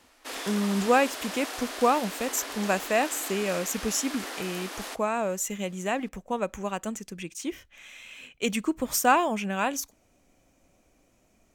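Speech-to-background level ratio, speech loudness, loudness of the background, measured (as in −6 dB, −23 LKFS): 8.0 dB, −28.0 LKFS, −36.0 LKFS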